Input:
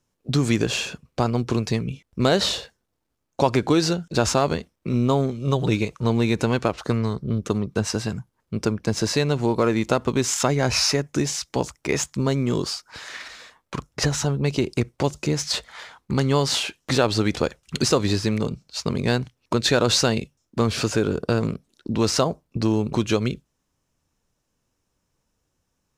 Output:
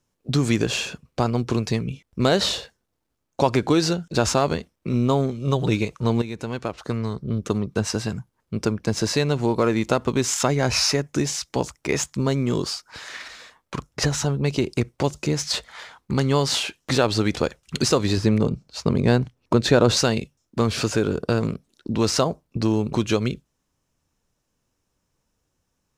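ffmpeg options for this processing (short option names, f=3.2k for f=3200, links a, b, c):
-filter_complex "[0:a]asettb=1/sr,asplit=3[a][b][c];[a]atrim=end=18.174[d];[b]atrim=start=18.17:end=19.97,asetpts=PTS-STARTPTS,afade=t=in:d=0.004:c=qsin,afade=t=out:st=1.796:d=0.004:c=qsin,tiltshelf=f=1.4k:g=4.5[e];[c]atrim=start=19.966[f];[d][e]acrossfade=d=0.004:c1=hsin:c2=qsin[g];[g][f]acrossfade=d=0.004:c1=qsin:c2=hsin,asplit=2[h][i];[h]atrim=end=6.22,asetpts=PTS-STARTPTS,afade=t=out:st=6.216:d=0.004:c=hsin:silence=0.237137[j];[i]atrim=start=6.22,asetpts=PTS-STARTPTS,afade=t=in:d=1.3:silence=0.237137[k];[j][k]concat=n=2:v=0:a=1"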